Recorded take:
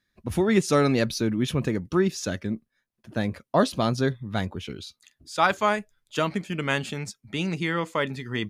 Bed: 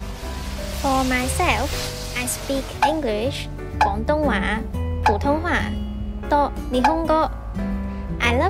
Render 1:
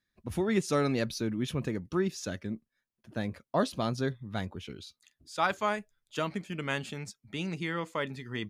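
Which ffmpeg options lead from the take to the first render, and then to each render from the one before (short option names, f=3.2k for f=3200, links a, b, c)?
-af "volume=-7dB"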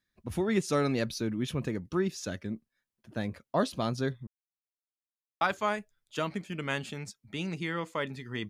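-filter_complex "[0:a]asplit=3[a][b][c];[a]atrim=end=4.27,asetpts=PTS-STARTPTS,afade=t=out:st=4.266:d=0.004:c=hsin[d];[b]atrim=start=4.27:end=5.41,asetpts=PTS-STARTPTS,volume=0[e];[c]atrim=start=5.41,asetpts=PTS-STARTPTS,afade=t=in:d=0.004:c=hsin[f];[d][e][f]concat=n=3:v=0:a=1"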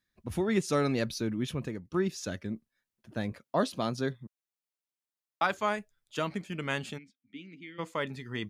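-filter_complex "[0:a]asettb=1/sr,asplit=3[a][b][c];[a]atrim=end=3.324[d];[b]atrim=start=3.32:end=5.55,asetpts=PTS-STARTPTS,afade=t=in:d=0.004:c=qsin,afade=t=out:st=2.226:d=0.004:c=qsin,highpass=130[e];[c]atrim=start=5.546[f];[d][e]acrossfade=d=0.004:c1=hsin:c2=qsin[g];[g][f]acrossfade=d=0.004:c1=qsin:c2=hsin,asplit=3[h][i][j];[h]afade=t=out:st=6.97:d=0.02[k];[i]asplit=3[l][m][n];[l]bandpass=f=270:t=q:w=8,volume=0dB[o];[m]bandpass=f=2.29k:t=q:w=8,volume=-6dB[p];[n]bandpass=f=3.01k:t=q:w=8,volume=-9dB[q];[o][p][q]amix=inputs=3:normalize=0,afade=t=in:st=6.97:d=0.02,afade=t=out:st=7.78:d=0.02[r];[j]afade=t=in:st=7.78:d=0.02[s];[k][r][s]amix=inputs=3:normalize=0,asplit=2[t][u];[t]atrim=end=1.94,asetpts=PTS-STARTPTS,afade=t=out:st=1.4:d=0.54:silence=0.375837[v];[u]atrim=start=1.94,asetpts=PTS-STARTPTS,afade=t=in:d=0.004:c=hsin:silence=0.375837[w];[v][w]concat=n=2:v=0:a=1"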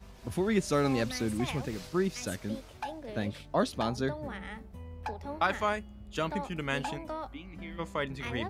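-filter_complex "[1:a]volume=-20dB[a];[0:a][a]amix=inputs=2:normalize=0"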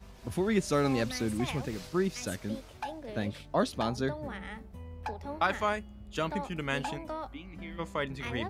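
-af anull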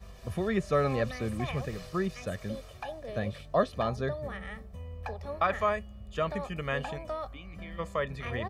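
-filter_complex "[0:a]acrossover=split=2800[a][b];[b]acompressor=threshold=-53dB:ratio=4:attack=1:release=60[c];[a][c]amix=inputs=2:normalize=0,aecho=1:1:1.7:0.6"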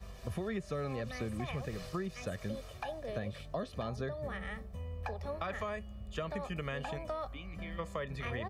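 -filter_complex "[0:a]acrossover=split=420|2600[a][b][c];[b]alimiter=level_in=3dB:limit=-24dB:level=0:latency=1,volume=-3dB[d];[a][d][c]amix=inputs=3:normalize=0,acompressor=threshold=-34dB:ratio=6"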